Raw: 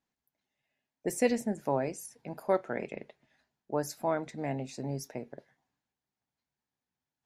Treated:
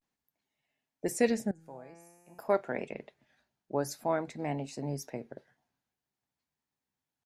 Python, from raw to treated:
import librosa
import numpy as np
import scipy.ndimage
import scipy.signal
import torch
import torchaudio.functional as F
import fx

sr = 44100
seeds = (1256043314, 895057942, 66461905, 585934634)

y = fx.comb_fb(x, sr, f0_hz=170.0, decay_s=1.6, harmonics='all', damping=0.0, mix_pct=90, at=(1.51, 2.38))
y = fx.vibrato(y, sr, rate_hz=0.49, depth_cents=84.0)